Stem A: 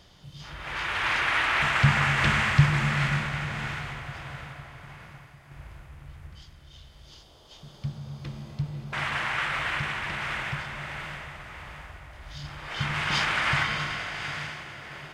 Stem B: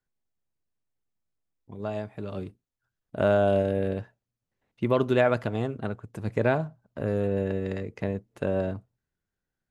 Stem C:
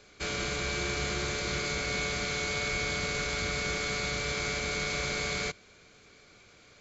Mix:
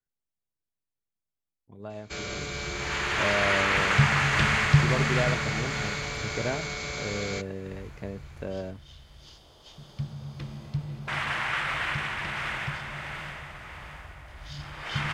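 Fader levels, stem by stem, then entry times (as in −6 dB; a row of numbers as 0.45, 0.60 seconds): −0.5, −7.5, −2.5 decibels; 2.15, 0.00, 1.90 seconds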